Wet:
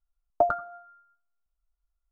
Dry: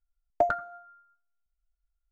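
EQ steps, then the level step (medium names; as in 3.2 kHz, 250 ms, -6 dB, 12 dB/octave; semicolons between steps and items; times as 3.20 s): resonant high shelf 1.5 kHz -7.5 dB, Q 3; 0.0 dB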